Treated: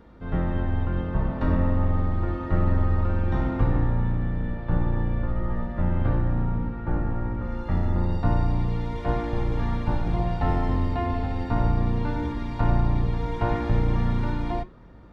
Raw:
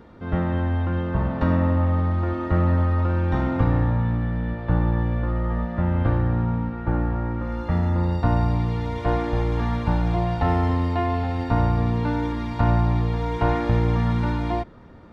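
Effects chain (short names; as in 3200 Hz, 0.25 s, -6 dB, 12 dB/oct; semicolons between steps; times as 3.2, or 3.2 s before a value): octaver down 2 oct, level +1 dB; flange 0.47 Hz, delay 6 ms, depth 4.1 ms, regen -83%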